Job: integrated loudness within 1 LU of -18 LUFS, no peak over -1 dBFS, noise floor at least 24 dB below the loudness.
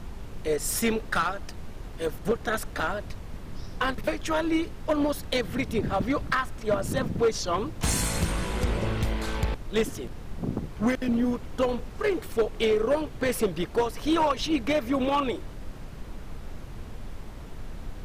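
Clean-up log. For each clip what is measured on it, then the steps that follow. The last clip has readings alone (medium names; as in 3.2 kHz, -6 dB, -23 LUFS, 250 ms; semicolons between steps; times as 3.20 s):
clipped samples 0.8%; clipping level -17.5 dBFS; noise floor -41 dBFS; noise floor target -52 dBFS; loudness -28.0 LUFS; peak level -17.5 dBFS; loudness target -18.0 LUFS
-> clip repair -17.5 dBFS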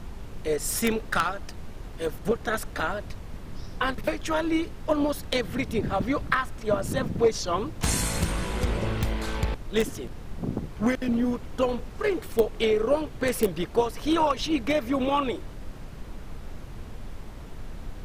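clipped samples 0.0%; noise floor -41 dBFS; noise floor target -52 dBFS
-> noise print and reduce 11 dB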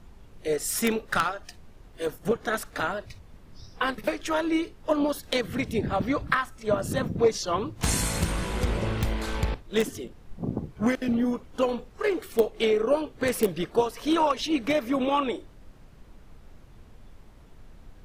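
noise floor -51 dBFS; noise floor target -52 dBFS
-> noise print and reduce 6 dB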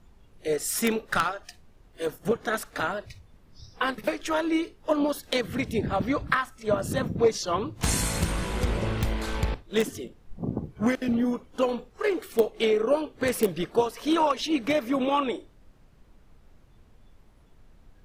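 noise floor -56 dBFS; loudness -27.5 LUFS; peak level -8.5 dBFS; loudness target -18.0 LUFS
-> trim +9.5 dB; peak limiter -1 dBFS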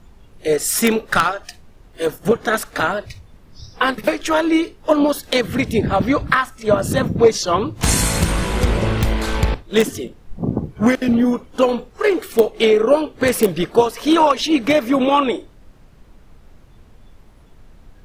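loudness -18.0 LUFS; peak level -1.0 dBFS; noise floor -47 dBFS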